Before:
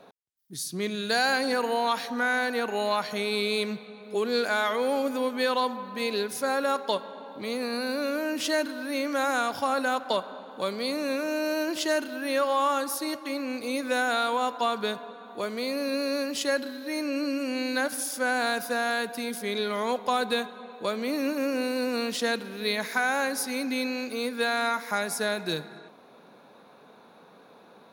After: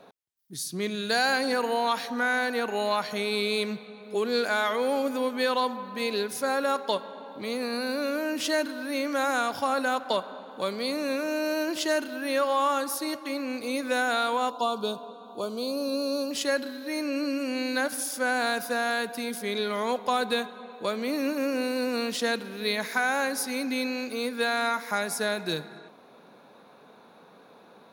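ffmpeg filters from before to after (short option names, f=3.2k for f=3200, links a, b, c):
-filter_complex "[0:a]asettb=1/sr,asplit=3[a][b][c];[a]atrim=end=14.504[d];[b]atrim=start=14.5:end=16.31,asetpts=PTS-STARTPTS,afade=t=in:d=0.004:c=qsin,afade=t=out:st=1.806:d=0.004:c=qsin,asuperstop=centerf=1900:order=4:qfactor=1.1[e];[c]atrim=start=16.306[f];[d][e]acrossfade=d=0.004:c1=hsin:c2=qsin[g];[g][f]acrossfade=d=0.004:c1=qsin:c2=hsin"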